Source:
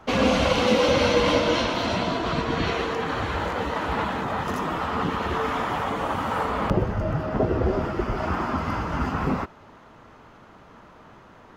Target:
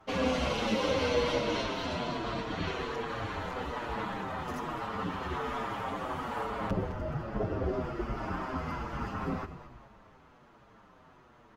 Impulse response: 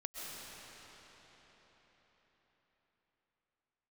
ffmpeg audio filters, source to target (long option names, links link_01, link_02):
-filter_complex "[0:a]asplit=5[link_01][link_02][link_03][link_04][link_05];[link_02]adelay=212,afreqshift=-73,volume=-12.5dB[link_06];[link_03]adelay=424,afreqshift=-146,volume=-19.4dB[link_07];[link_04]adelay=636,afreqshift=-219,volume=-26.4dB[link_08];[link_05]adelay=848,afreqshift=-292,volume=-33.3dB[link_09];[link_01][link_06][link_07][link_08][link_09]amix=inputs=5:normalize=0,asplit=2[link_10][link_11];[link_11]adelay=7.1,afreqshift=-1.2[link_12];[link_10][link_12]amix=inputs=2:normalize=1,volume=-6.5dB"